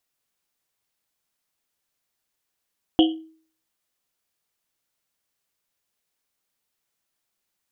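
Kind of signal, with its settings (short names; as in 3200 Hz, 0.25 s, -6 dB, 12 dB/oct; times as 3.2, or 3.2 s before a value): Risset drum, pitch 320 Hz, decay 0.48 s, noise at 3100 Hz, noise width 390 Hz, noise 25%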